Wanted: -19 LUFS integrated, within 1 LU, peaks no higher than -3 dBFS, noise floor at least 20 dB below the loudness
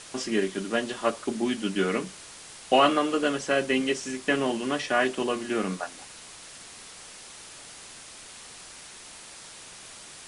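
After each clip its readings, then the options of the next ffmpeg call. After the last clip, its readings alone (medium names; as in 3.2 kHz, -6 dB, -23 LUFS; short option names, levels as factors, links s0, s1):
noise floor -46 dBFS; noise floor target -47 dBFS; loudness -26.5 LUFS; peak level -7.5 dBFS; loudness target -19.0 LUFS
-> -af "afftdn=nr=6:nf=-46"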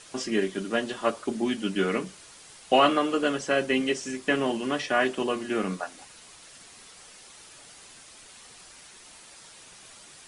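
noise floor -50 dBFS; loudness -26.5 LUFS; peak level -7.5 dBFS; loudness target -19.0 LUFS
-> -af "volume=2.37,alimiter=limit=0.708:level=0:latency=1"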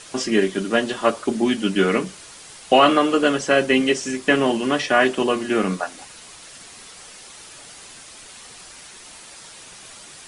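loudness -19.5 LUFS; peak level -3.0 dBFS; noise floor -43 dBFS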